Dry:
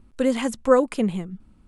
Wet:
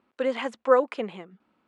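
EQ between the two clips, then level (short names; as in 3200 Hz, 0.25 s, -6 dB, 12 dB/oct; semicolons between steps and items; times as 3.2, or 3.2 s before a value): BPF 480–3100 Hz; 0.0 dB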